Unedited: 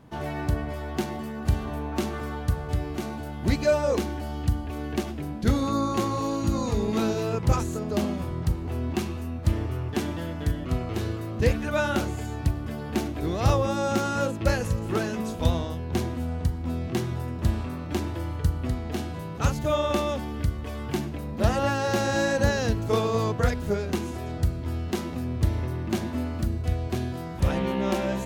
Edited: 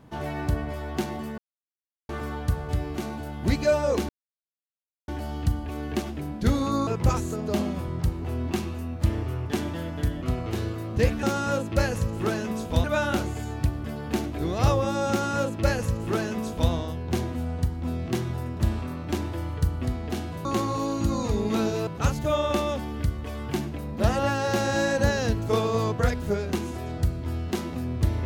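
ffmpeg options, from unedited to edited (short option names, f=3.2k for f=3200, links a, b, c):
-filter_complex "[0:a]asplit=9[a][b][c][d][e][f][g][h][i];[a]atrim=end=1.38,asetpts=PTS-STARTPTS,afade=t=out:st=1.376:d=0.004:c=hsin[j];[b]atrim=start=1.38:end=2.09,asetpts=PTS-STARTPTS,volume=0[k];[c]atrim=start=2.09:end=4.09,asetpts=PTS-STARTPTS,afade=t=in:d=0.004:c=hsin,afade=t=out:st=1.996:d=0.004:c=hsin,apad=pad_dur=0.99[l];[d]atrim=start=4.09:end=5.882,asetpts=PTS-STARTPTS,afade=t=in:d=0.004:c=hsin[m];[e]atrim=start=7.298:end=11.662[n];[f]atrim=start=13.918:end=15.532[o];[g]atrim=start=11.658:end=19.272[p];[h]atrim=start=5.878:end=7.302[q];[i]atrim=start=19.268[r];[j][k][l][m]concat=n=4:v=0:a=1[s];[s][n]acrossfade=d=0.004:c1=hsin:c2=hsin[t];[t][o]acrossfade=d=0.004:c1=hsin:c2=hsin[u];[u][p]acrossfade=d=0.004:c1=hsin:c2=hsin[v];[v][q]acrossfade=d=0.004:c1=hsin:c2=hsin[w];[w][r]acrossfade=d=0.004:c1=hsin:c2=hsin"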